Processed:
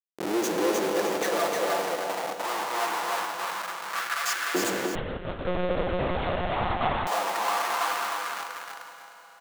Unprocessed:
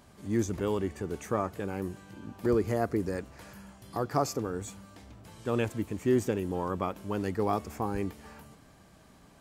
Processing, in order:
spectral magnitudes quantised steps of 15 dB
high-pass filter 43 Hz 12 dB per octave
notch filter 2,400 Hz, Q 23
comb filter 5.9 ms, depth 90%
hum removal 236.2 Hz, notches 5
comparator with hysteresis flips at −41 dBFS
auto-filter high-pass saw up 0.22 Hz 340–1,600 Hz
repeating echo 306 ms, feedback 29%, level −3.5 dB
four-comb reverb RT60 4 s, combs from 26 ms, DRR 9 dB
0:04.95–0:07.07: one-pitch LPC vocoder at 8 kHz 180 Hz
level +2.5 dB

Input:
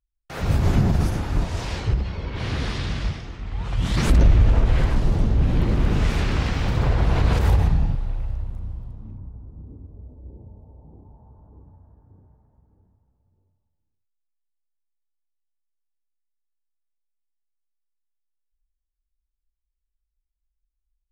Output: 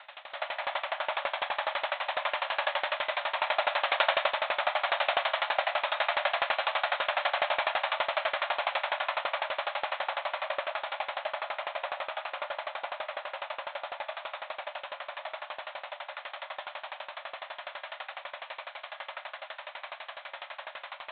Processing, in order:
compressor on every frequency bin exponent 0.2
0:03.36–0:04.22: leveller curve on the samples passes 2
linear-prediction vocoder at 8 kHz whisper
linear-phase brick-wall high-pass 540 Hz
on a send: feedback delay with all-pass diffusion 1,215 ms, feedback 71%, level −3 dB
on the sum: four-comb reverb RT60 1.3 s, combs from 27 ms, DRR −4.5 dB
tremolo with a ramp in dB decaying 12 Hz, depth 22 dB
level −6.5 dB

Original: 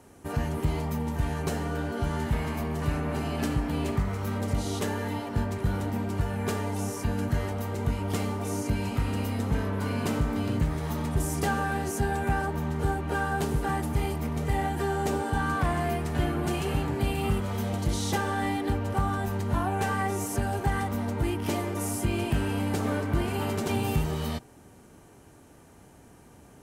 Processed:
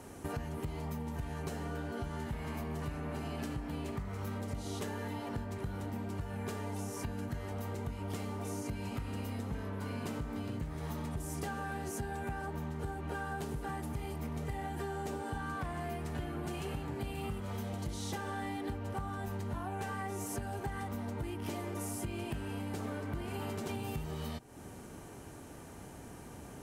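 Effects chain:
downward compressor, threshold −41 dBFS, peak gain reduction 18.5 dB
level +4 dB

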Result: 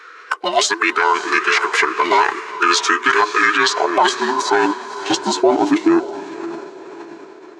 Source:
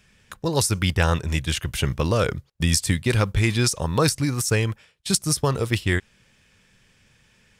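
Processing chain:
frequency inversion band by band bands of 500 Hz
high-pass filter 76 Hz
bass and treble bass −15 dB, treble +6 dB
hum removal 121.6 Hz, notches 7
in parallel at 0 dB: downward compressor, threshold −35 dBFS, peak gain reduction 21.5 dB
on the sum: band-pass filter sweep 1,700 Hz → 640 Hz, 0:03.45–0:05.12
soft clipping −12.5 dBFS, distortion −28 dB
on a send: feedback delay with all-pass diffusion 542 ms, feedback 44%, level −14 dB
on the sum: formants moved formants −5 semitones
boost into a limiter +23 dB
level −3 dB

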